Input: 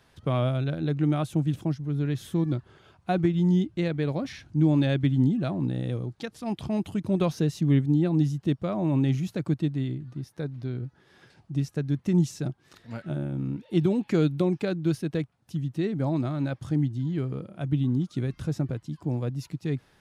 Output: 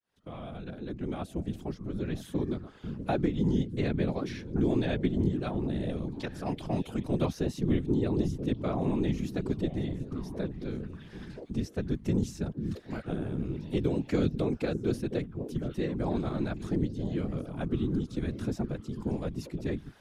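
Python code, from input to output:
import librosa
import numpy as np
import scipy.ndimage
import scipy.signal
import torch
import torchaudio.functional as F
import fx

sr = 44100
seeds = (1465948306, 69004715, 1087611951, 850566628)

y = fx.fade_in_head(x, sr, length_s=2.99)
y = fx.low_shelf(y, sr, hz=110.0, db=-7.0)
y = fx.echo_stepped(y, sr, ms=490, hz=180.0, octaves=1.4, feedback_pct=70, wet_db=-8)
y = fx.whisperise(y, sr, seeds[0])
y = fx.band_squash(y, sr, depth_pct=40)
y = y * librosa.db_to_amplitude(-3.0)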